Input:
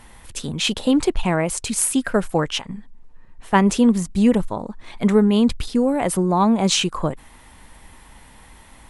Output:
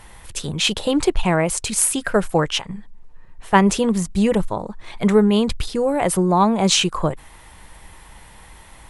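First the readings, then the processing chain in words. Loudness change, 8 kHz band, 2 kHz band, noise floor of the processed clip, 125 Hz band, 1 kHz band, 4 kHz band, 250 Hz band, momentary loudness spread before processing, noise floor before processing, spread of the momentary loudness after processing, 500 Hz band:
+0.5 dB, +2.5 dB, +2.5 dB, -45 dBFS, +1.0 dB, +2.5 dB, +2.5 dB, -1.5 dB, 14 LU, -47 dBFS, 13 LU, +2.0 dB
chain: bell 250 Hz -13.5 dB 0.23 oct; gain +2.5 dB

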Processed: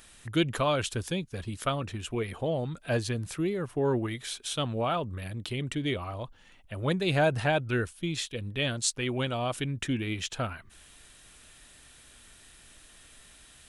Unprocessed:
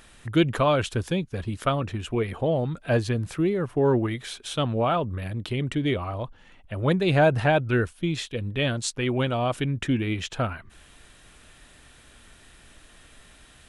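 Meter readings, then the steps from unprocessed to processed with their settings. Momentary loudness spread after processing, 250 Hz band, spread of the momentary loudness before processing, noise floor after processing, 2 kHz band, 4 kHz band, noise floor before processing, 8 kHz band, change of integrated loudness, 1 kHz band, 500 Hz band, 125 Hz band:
8 LU, -6.0 dB, 9 LU, -55 dBFS, -3.5 dB, -1.0 dB, -53 dBFS, +2.5 dB, -5.0 dB, -5.5 dB, -6.0 dB, -6.0 dB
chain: high shelf 3400 Hz +10 dB; gain -6 dB

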